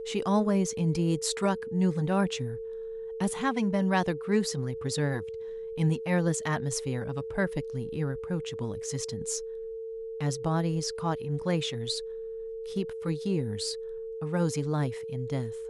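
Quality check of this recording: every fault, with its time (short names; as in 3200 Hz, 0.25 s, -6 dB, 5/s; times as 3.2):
tone 450 Hz -35 dBFS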